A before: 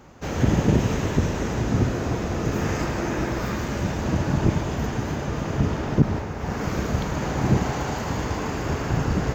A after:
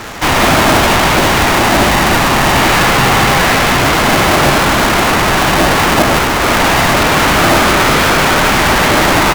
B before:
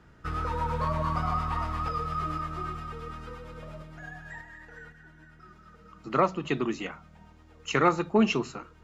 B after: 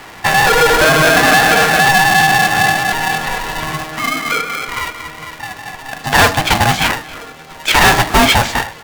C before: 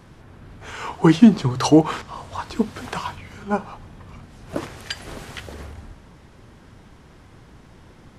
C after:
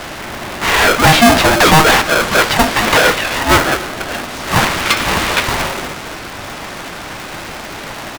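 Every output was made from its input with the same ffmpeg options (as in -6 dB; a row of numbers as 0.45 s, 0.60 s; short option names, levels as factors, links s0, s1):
-filter_complex "[0:a]acrossover=split=3800[s0][s1];[s1]acompressor=threshold=0.00224:ratio=4:attack=1:release=60[s2];[s0][s2]amix=inputs=2:normalize=0,asplit=2[s3][s4];[s4]highpass=f=720:p=1,volume=50.1,asoftclip=type=tanh:threshold=0.891[s5];[s3][s5]amix=inputs=2:normalize=0,lowpass=f=6700:p=1,volume=0.501,asplit=2[s6][s7];[s7]adelay=270,highpass=300,lowpass=3400,asoftclip=type=hard:threshold=0.335,volume=0.141[s8];[s6][s8]amix=inputs=2:normalize=0,aeval=exprs='val(0)*sgn(sin(2*PI*470*n/s))':c=same"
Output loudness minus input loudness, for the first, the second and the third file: +15.5 LU, +17.5 LU, +9.0 LU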